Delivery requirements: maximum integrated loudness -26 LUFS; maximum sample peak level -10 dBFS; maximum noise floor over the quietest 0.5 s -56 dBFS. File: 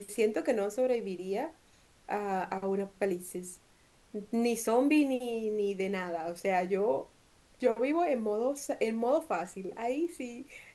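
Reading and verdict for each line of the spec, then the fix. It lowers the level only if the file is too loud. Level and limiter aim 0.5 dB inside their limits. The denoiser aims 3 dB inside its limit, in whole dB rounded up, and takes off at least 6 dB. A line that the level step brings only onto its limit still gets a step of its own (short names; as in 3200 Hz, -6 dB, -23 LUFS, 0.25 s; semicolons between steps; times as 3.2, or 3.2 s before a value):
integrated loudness -32.0 LUFS: OK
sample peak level -15.0 dBFS: OK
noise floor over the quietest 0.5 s -63 dBFS: OK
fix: none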